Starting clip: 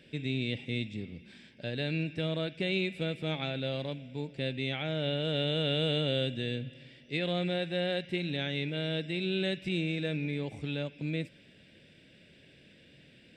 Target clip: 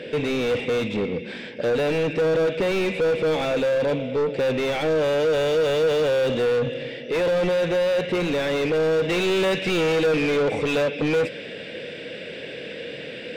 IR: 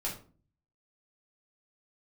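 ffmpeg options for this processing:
-filter_complex "[0:a]equalizer=f=480:t=o:w=0.32:g=13,asetnsamples=n=441:p=0,asendcmd='9.09 lowpass f 1800',asplit=2[s0][s1];[s1]highpass=f=720:p=1,volume=50.1,asoftclip=type=tanh:threshold=0.224[s2];[s0][s2]amix=inputs=2:normalize=0,lowpass=f=1000:p=1,volume=0.501"

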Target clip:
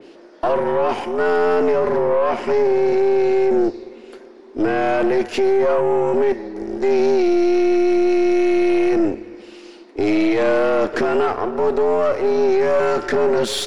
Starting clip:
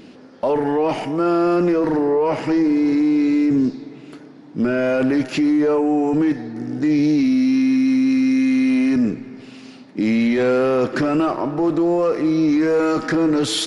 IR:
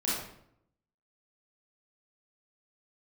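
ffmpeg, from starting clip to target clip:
-af "afreqshift=91,aeval=exprs='0.376*(cos(1*acos(clip(val(0)/0.376,-1,1)))-cos(1*PI/2))+0.0531*(cos(4*acos(clip(val(0)/0.376,-1,1)))-cos(4*PI/2))+0.0119*(cos(6*acos(clip(val(0)/0.376,-1,1)))-cos(6*PI/2))+0.00376*(cos(7*acos(clip(val(0)/0.376,-1,1)))-cos(7*PI/2))+0.00841*(cos(8*acos(clip(val(0)/0.376,-1,1)))-cos(8*PI/2))':c=same,adynamicequalizer=threshold=0.0224:dfrequency=3100:dqfactor=0.7:tfrequency=3100:tqfactor=0.7:attack=5:release=100:ratio=0.375:range=1.5:mode=cutabove:tftype=highshelf"

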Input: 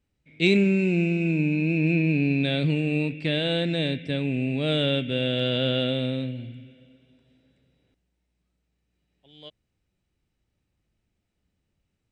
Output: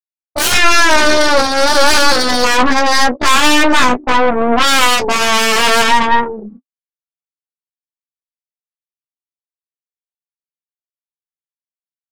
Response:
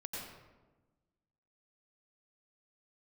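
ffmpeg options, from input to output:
-filter_complex "[0:a]afftfilt=real='re*gte(hypot(re,im),0.112)':imag='im*gte(hypot(re,im),0.112)':win_size=1024:overlap=0.75,acrossover=split=330|850|1500[s0][s1][s2][s3];[s2]acompressor=threshold=0.00112:ratio=20[s4];[s0][s1][s4][s3]amix=inputs=4:normalize=0,highpass=200,equalizer=f=260:t=q:w=4:g=-9,equalizer=f=370:t=q:w=4:g=3,equalizer=f=660:t=q:w=4:g=10,equalizer=f=1600:t=q:w=4:g=-4,lowpass=f=2600:w=0.5412,lowpass=f=2600:w=1.3066,aeval=exprs='0.266*sin(PI/2*6.31*val(0)/0.266)':c=same,asetrate=78577,aresample=44100,atempo=0.561231,flanger=delay=8.8:depth=4.9:regen=-26:speed=0.44:shape=triangular,asplit=2[s5][s6];[s6]adelay=16,volume=0.447[s7];[s5][s7]amix=inputs=2:normalize=0,aeval=exprs='0.376*(cos(1*acos(clip(val(0)/0.376,-1,1)))-cos(1*PI/2))+0.119*(cos(4*acos(clip(val(0)/0.376,-1,1)))-cos(4*PI/2))':c=same,volume=1.68"

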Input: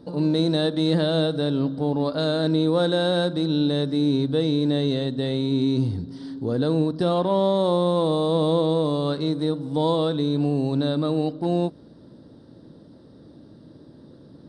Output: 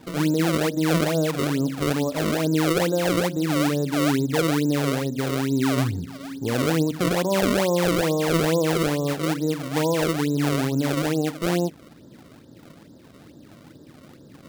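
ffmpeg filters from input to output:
-filter_complex "[0:a]acrossover=split=1100[s0][s1];[s0]acrusher=samples=30:mix=1:aa=0.000001:lfo=1:lforange=48:lforate=2.3[s2];[s1]acompressor=threshold=0.00251:ratio=4[s3];[s2][s3]amix=inputs=2:normalize=0"

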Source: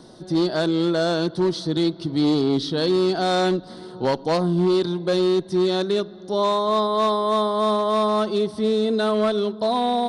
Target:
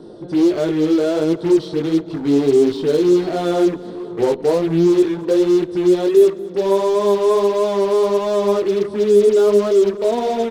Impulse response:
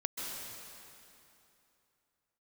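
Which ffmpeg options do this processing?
-filter_complex "[0:a]highshelf=f=2700:g=-9,flanger=delay=17:depth=4.1:speed=1.5,equalizer=f=430:t=o:w=0.77:g=14,asetrate=42336,aresample=44100,asplit=2[s0][s1];[s1]aeval=exprs='0.0316*(abs(mod(val(0)/0.0316+3,4)-2)-1)':c=same,volume=0.668[s2];[s0][s2]amix=inputs=2:normalize=0,aecho=1:1:220|440|660:0.0891|0.0357|0.0143"

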